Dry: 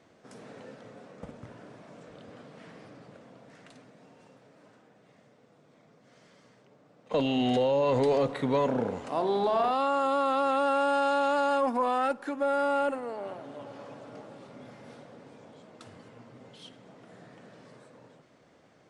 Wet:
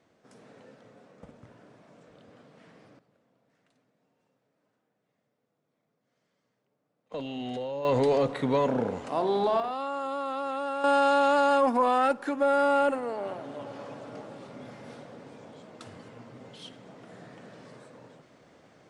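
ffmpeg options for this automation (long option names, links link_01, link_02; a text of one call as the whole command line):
ffmpeg -i in.wav -af "asetnsamples=nb_out_samples=441:pad=0,asendcmd='2.99 volume volume -18dB;7.12 volume volume -9dB;7.85 volume volume 1dB;9.6 volume volume -6dB;10.84 volume volume 3.5dB',volume=-6dB" out.wav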